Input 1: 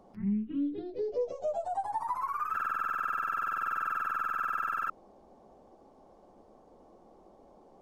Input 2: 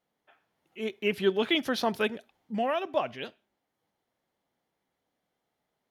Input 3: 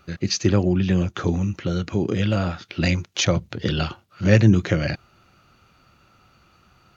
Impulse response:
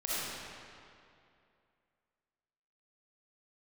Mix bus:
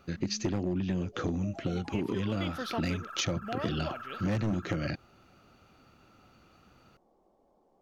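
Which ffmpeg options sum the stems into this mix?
-filter_complex "[0:a]volume=-10.5dB[a];[1:a]adelay=900,volume=-7dB[b];[2:a]equalizer=f=270:w=1.6:g=7,volume=-5.5dB[c];[a][b][c]amix=inputs=3:normalize=0,volume=16.5dB,asoftclip=hard,volume=-16.5dB,acompressor=threshold=-28dB:ratio=6"

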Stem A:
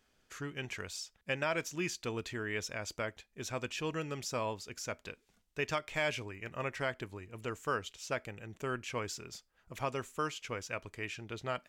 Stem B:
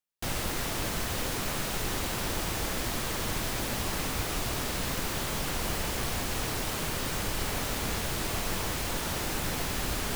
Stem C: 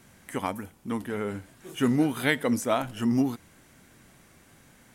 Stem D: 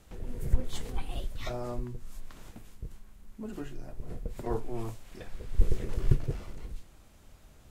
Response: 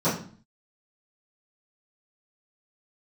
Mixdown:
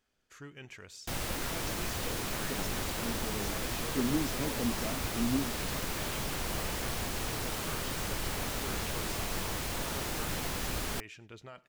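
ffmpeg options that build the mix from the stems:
-filter_complex "[0:a]alimiter=level_in=5.5dB:limit=-24dB:level=0:latency=1:release=22,volume=-5.5dB,volume=-6.5dB,asplit=2[a][b];[b]volume=-24dB[c];[1:a]adelay=850,volume=-3.5dB[d];[2:a]bandpass=f=330:t=q:w=0.72:csg=0,lowshelf=f=370:g=11.5,adelay=2150,volume=-14.5dB[e];[c]aecho=0:1:100|200|300|400|500|600|700|800:1|0.54|0.292|0.157|0.085|0.0459|0.0248|0.0134[f];[a][d][e][f]amix=inputs=4:normalize=0"

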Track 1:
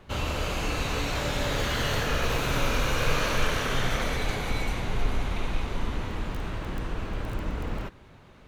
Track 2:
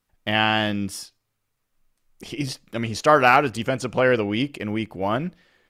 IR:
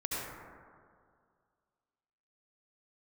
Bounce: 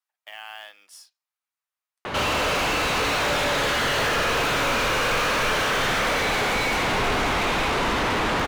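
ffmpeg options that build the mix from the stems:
-filter_complex "[0:a]asplit=2[a][b];[b]highpass=f=720:p=1,volume=39dB,asoftclip=type=tanh:threshold=-12dB[c];[a][c]amix=inputs=2:normalize=0,lowpass=f=2.6k:p=1,volume=-6dB,adelay=2050,volume=-3dB[d];[1:a]highpass=f=720:w=0.5412,highpass=f=720:w=1.3066,alimiter=limit=-14dB:level=0:latency=1:release=240,acrusher=bits=4:mode=log:mix=0:aa=0.000001,volume=-11.5dB[e];[d][e]amix=inputs=2:normalize=0"

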